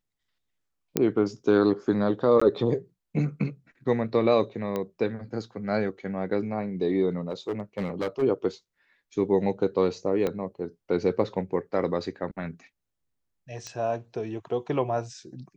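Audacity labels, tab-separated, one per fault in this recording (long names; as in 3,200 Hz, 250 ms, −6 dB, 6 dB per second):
0.970000	0.970000	click −8 dBFS
2.400000	2.420000	drop-out 15 ms
4.760000	4.760000	click −17 dBFS
7.290000	8.230000	clipping −23.5 dBFS
10.270000	10.270000	click −15 dBFS
13.670000	13.670000	click −23 dBFS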